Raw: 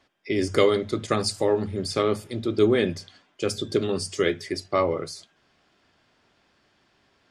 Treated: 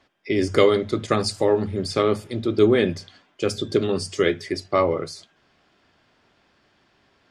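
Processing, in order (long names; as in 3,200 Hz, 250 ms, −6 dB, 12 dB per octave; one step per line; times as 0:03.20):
high-shelf EQ 6,900 Hz −7 dB
level +3 dB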